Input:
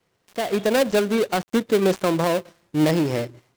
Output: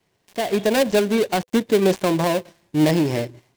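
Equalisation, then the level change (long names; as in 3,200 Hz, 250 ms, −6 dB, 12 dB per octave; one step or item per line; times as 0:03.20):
parametric band 1,300 Hz −7.5 dB 0.31 octaves
notch filter 500 Hz, Q 13
+2.0 dB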